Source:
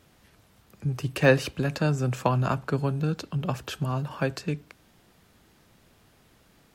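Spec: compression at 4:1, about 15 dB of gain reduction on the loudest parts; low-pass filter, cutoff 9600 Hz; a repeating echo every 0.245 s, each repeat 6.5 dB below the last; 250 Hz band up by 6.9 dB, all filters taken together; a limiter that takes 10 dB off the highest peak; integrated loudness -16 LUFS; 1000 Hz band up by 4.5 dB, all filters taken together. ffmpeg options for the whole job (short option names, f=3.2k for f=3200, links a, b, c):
-af "lowpass=9.6k,equalizer=f=250:t=o:g=9,equalizer=f=1k:t=o:g=5,acompressor=threshold=-28dB:ratio=4,alimiter=level_in=0.5dB:limit=-24dB:level=0:latency=1,volume=-0.5dB,aecho=1:1:245|490|735|980|1225|1470:0.473|0.222|0.105|0.0491|0.0231|0.0109,volume=18dB"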